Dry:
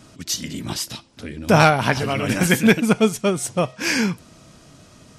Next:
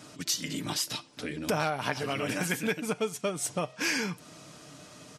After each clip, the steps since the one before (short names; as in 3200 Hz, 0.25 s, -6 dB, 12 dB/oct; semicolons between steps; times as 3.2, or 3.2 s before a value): comb 6.7 ms, depth 39%; compressor 4:1, threshold -27 dBFS, peak gain reduction 16 dB; HPF 270 Hz 6 dB/oct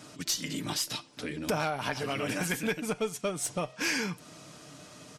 one diode to ground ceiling -16 dBFS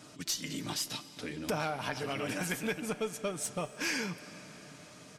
reverb RT60 4.7 s, pre-delay 0.11 s, DRR 14 dB; gain -3.5 dB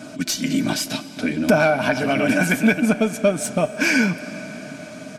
small resonant body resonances 240/630/1500/2300 Hz, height 14 dB, ringing for 35 ms; gain +9 dB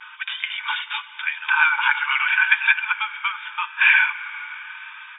vibrato 0.86 Hz 52 cents; brick-wall FIR band-pass 840–3700 Hz; gain +6 dB